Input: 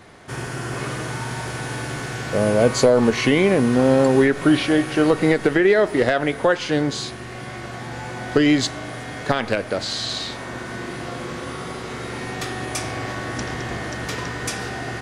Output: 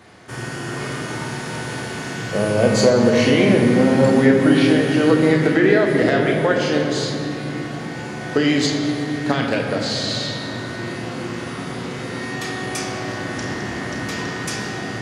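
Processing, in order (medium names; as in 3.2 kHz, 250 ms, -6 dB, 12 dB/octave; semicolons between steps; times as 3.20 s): high-pass 74 Hz; on a send: treble shelf 3 kHz +10.5 dB + reverberation RT60 3.5 s, pre-delay 6 ms, DRR 0.5 dB; on the sum: trim -1.5 dB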